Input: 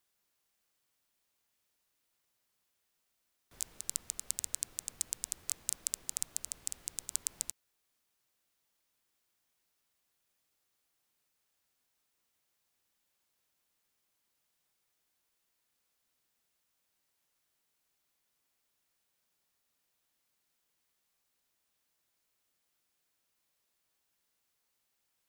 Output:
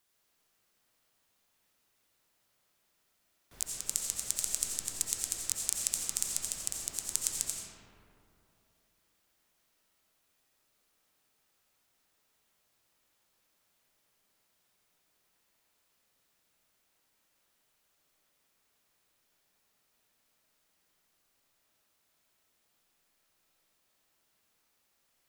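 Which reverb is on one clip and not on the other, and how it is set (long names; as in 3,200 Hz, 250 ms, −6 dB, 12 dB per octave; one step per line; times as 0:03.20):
comb and all-pass reverb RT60 2.8 s, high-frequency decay 0.4×, pre-delay 45 ms, DRR −2.5 dB
level +3 dB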